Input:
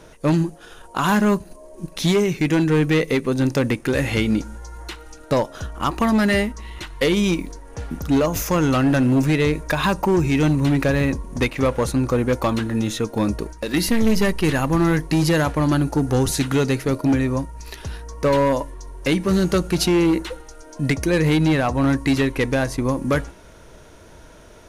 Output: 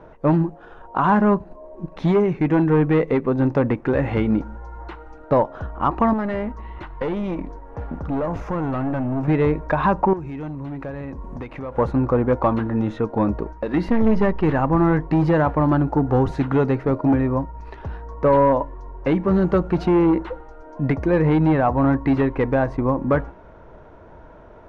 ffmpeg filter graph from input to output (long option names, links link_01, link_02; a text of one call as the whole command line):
ffmpeg -i in.wav -filter_complex "[0:a]asettb=1/sr,asplit=3[link_01][link_02][link_03];[link_01]atrim=end=6.134[link_04];[link_02]atrim=start=6.13:end=9.28,asetpts=PTS-STARTPTS,afade=type=in:duration=0.004:curve=qsin,afade=type=out:start_time=3.146:duration=0.004:curve=qsin,acompressor=threshold=-20dB:ratio=5:attack=3.2:release=140:knee=1:detection=peak,aeval=exprs='clip(val(0),-1,0.0531)':channel_layout=same[link_05];[link_03]atrim=start=9.276[link_06];[link_04][link_05]acrossfade=duration=0.004:curve1=hsin:curve2=qsin[link_07];[link_07][link_06]acrossfade=duration=0.004:curve1=qsin:curve2=hsin,asettb=1/sr,asplit=3[link_08][link_09][link_10];[link_08]atrim=end=10.134[link_11];[link_09]atrim=start=10.13:end=11.78,asetpts=PTS-STARTPTS,afade=type=in:duration=0.004:curve=qsin,afade=type=out:start_time=1.646:duration=0.004:curve=qsin,acompressor=threshold=-28dB:ratio=12:attack=3.2:release=140:knee=1:detection=peak,highshelf=frequency=4700:gain=10[link_12];[link_10]atrim=start=11.776[link_13];[link_11][link_12]acrossfade=duration=0.004:curve1=hsin:curve2=qsin[link_14];[link_14][link_13]acrossfade=duration=0.004:curve1=qsin:curve2=hsin,lowpass=1400,equalizer=frequency=860:width_type=o:width=1.1:gain=5.5" out.wav